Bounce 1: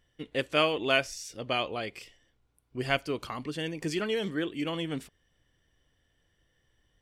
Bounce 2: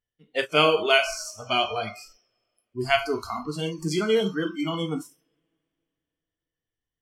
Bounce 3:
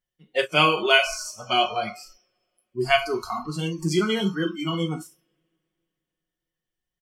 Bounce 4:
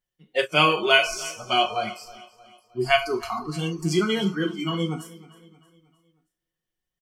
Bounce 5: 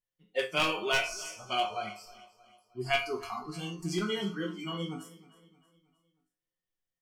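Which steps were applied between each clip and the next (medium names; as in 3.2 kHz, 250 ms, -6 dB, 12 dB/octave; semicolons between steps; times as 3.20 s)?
two-slope reverb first 0.55 s, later 3.4 s, from -19 dB, DRR 3.5 dB; spectral noise reduction 26 dB; trim +5 dB
comb 5.5 ms, depth 72%
feedback delay 313 ms, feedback 47%, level -19.5 dB
one-sided wavefolder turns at -12 dBFS; chord resonator F2 minor, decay 0.25 s; trim +3 dB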